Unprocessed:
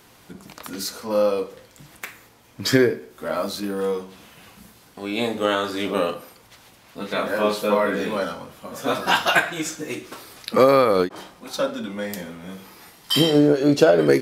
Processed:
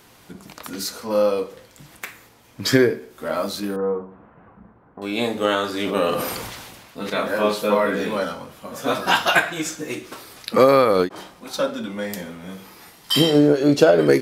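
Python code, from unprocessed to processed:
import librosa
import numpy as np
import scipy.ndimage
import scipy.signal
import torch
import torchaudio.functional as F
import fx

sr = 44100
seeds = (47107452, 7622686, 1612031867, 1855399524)

y = fx.lowpass(x, sr, hz=1400.0, slope=24, at=(3.76, 5.02))
y = fx.sustainer(y, sr, db_per_s=34.0, at=(5.82, 7.1))
y = y * librosa.db_to_amplitude(1.0)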